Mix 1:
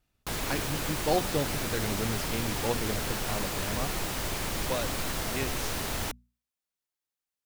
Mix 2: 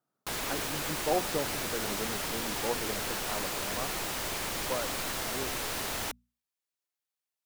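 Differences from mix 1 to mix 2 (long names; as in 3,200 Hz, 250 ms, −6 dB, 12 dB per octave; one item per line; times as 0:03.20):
speech: add elliptic band-pass filter 140–1,400 Hz
master: add low-shelf EQ 220 Hz −10.5 dB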